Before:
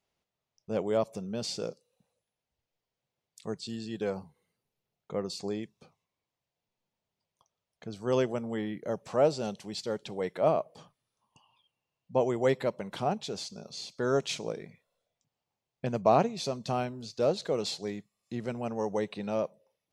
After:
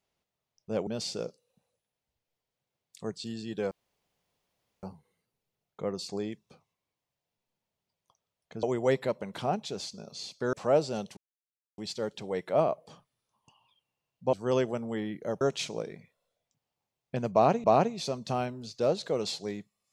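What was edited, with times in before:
0:00.87–0:01.30: remove
0:04.14: splice in room tone 1.12 s
0:07.94–0:09.02: swap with 0:12.21–0:14.11
0:09.66: splice in silence 0.61 s
0:16.03–0:16.34: repeat, 2 plays

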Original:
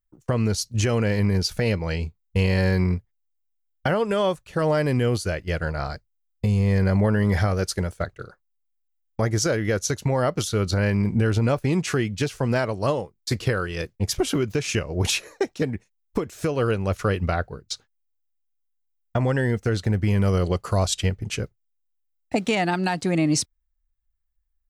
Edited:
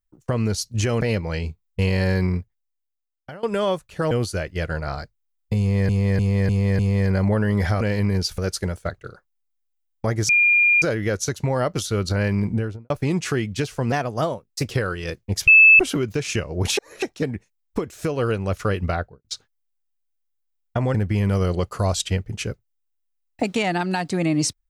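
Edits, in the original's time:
0:01.01–0:01.58: move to 0:07.53
0:02.80–0:04.00: fade out, to −20.5 dB
0:04.68–0:05.03: remove
0:06.51–0:06.81: repeat, 5 plays
0:09.44: insert tone 2,410 Hz −13 dBFS 0.53 s
0:11.05–0:11.52: fade out and dull
0:12.54–0:13.43: play speed 112%
0:14.19: insert tone 2,620 Hz −7 dBFS 0.32 s
0:15.17–0:15.42: reverse
0:17.34–0:17.64: fade out and dull
0:19.34–0:19.87: remove

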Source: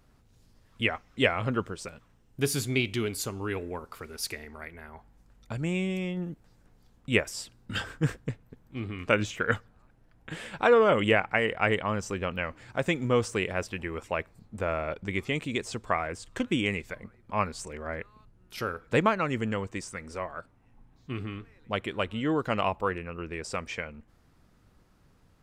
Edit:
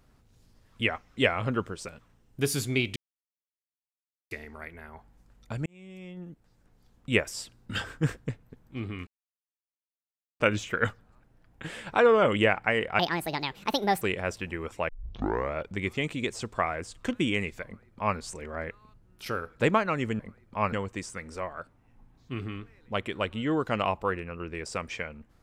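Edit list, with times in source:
0:02.96–0:04.31: silence
0:05.66–0:07.10: fade in
0:09.07: splice in silence 1.33 s
0:11.66–0:13.33: play speed 163%
0:14.20: tape start 0.66 s
0:16.96–0:17.49: duplicate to 0:19.51

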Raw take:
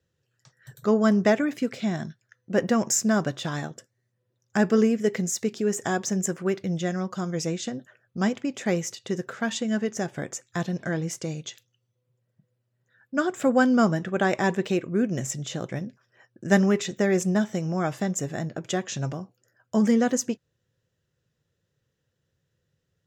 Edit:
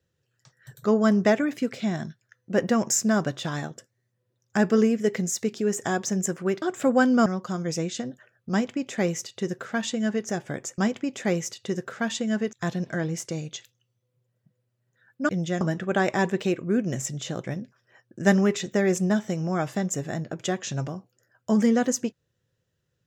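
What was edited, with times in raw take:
0:06.62–0:06.94: swap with 0:13.22–0:13.86
0:08.19–0:09.94: duplicate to 0:10.46

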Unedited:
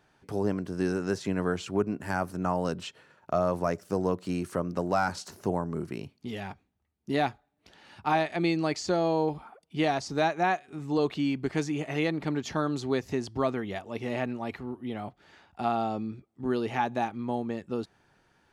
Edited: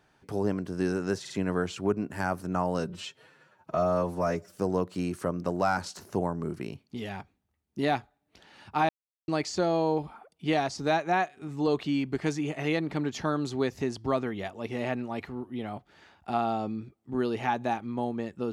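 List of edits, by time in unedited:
0:01.20: stutter 0.05 s, 3 plays
0:02.69–0:03.87: time-stretch 1.5×
0:08.20–0:08.59: silence

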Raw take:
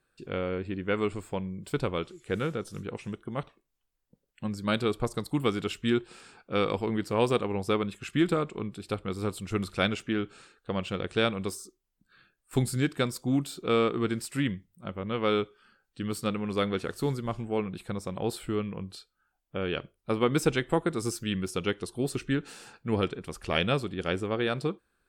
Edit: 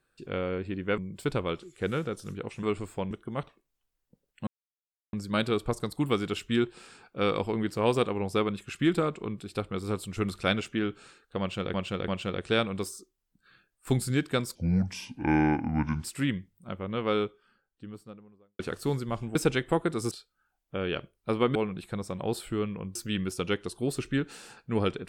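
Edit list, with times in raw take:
0:00.98–0:01.46: move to 0:03.11
0:04.47: splice in silence 0.66 s
0:10.74–0:11.08: repeat, 3 plays
0:13.21–0:14.21: play speed 67%
0:14.96–0:16.76: fade out and dull
0:17.52–0:18.92: swap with 0:20.36–0:21.12

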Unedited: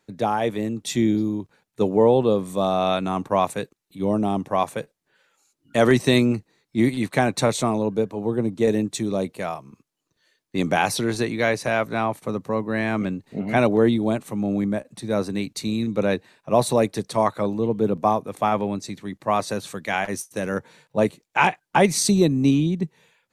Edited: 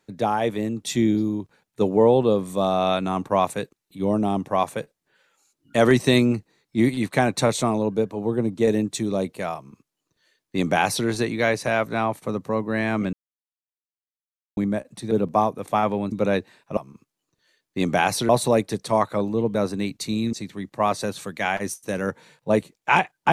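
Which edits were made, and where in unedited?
0:09.55–0:11.07: duplicate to 0:16.54
0:13.13–0:14.57: silence
0:15.11–0:15.89: swap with 0:17.80–0:18.81

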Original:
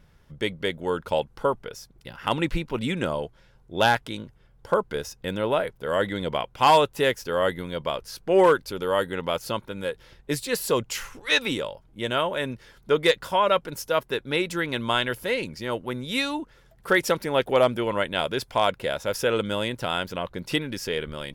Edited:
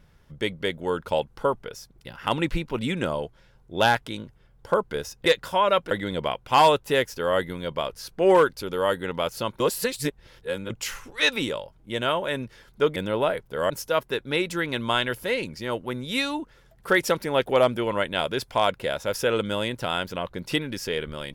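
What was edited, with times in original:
0:05.26–0:06.00: swap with 0:13.05–0:13.70
0:09.69–0:10.79: reverse

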